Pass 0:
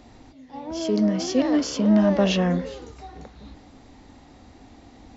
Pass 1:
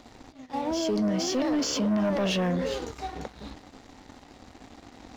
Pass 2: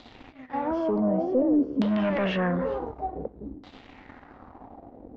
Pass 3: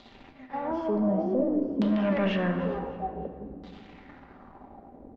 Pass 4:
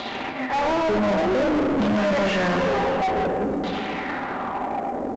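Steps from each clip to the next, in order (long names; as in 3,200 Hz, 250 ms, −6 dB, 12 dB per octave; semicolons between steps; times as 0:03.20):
low-shelf EQ 190 Hz −6 dB; leveller curve on the samples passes 2; brickwall limiter −21 dBFS, peak gain reduction 11.5 dB
auto-filter low-pass saw down 0.55 Hz 280–3,900 Hz
repeating echo 306 ms, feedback 34%, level −19 dB; rectangular room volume 3,400 cubic metres, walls mixed, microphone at 1.2 metres; level −3.5 dB
mid-hump overdrive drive 36 dB, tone 2,100 Hz, clips at −15 dBFS; single-tap delay 486 ms −22 dB; mu-law 128 kbit/s 16,000 Hz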